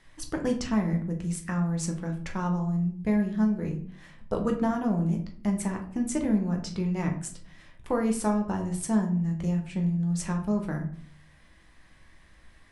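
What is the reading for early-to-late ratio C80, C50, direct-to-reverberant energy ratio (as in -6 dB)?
14.0 dB, 9.5 dB, 2.0 dB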